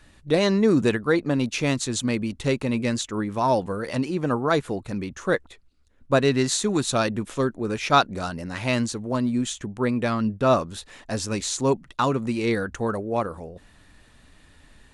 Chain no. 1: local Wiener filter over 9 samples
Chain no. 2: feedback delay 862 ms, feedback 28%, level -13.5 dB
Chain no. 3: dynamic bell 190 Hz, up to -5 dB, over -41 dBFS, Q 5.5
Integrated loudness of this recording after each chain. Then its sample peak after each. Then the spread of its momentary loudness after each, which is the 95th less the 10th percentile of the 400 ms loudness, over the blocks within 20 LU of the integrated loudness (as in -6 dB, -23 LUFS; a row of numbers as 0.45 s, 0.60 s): -24.5 LUFS, -24.0 LUFS, -24.5 LUFS; -4.5 dBFS, -4.5 dBFS, -4.5 dBFS; 10 LU, 11 LU, 10 LU